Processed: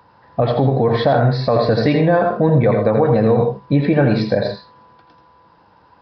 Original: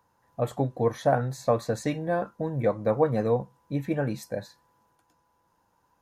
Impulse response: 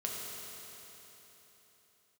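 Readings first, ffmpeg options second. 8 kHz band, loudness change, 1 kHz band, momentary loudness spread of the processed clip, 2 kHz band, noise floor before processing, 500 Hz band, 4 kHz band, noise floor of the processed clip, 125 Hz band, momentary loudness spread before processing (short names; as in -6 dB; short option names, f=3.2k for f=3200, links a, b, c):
under -10 dB, +12.0 dB, +10.5 dB, 6 LU, +12.5 dB, -70 dBFS, +11.0 dB, +16.5 dB, -52 dBFS, +14.0 dB, 9 LU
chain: -filter_complex "[0:a]highpass=53,acompressor=threshold=-24dB:ratio=6,asplit=2[a][b];[1:a]atrim=start_sample=2205,afade=t=out:st=0.13:d=0.01,atrim=end_sample=6174,adelay=83[c];[b][c]afir=irnorm=-1:irlink=0,volume=-6.5dB[d];[a][d]amix=inputs=2:normalize=0,aresample=11025,aresample=44100,alimiter=level_in=22dB:limit=-1dB:release=50:level=0:latency=1,volume=-4.5dB"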